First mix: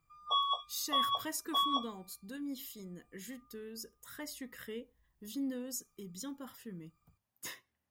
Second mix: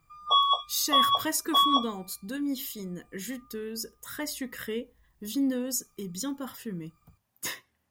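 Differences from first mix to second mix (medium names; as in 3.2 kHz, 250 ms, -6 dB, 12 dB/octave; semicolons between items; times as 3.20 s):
speech +10.0 dB; background +9.0 dB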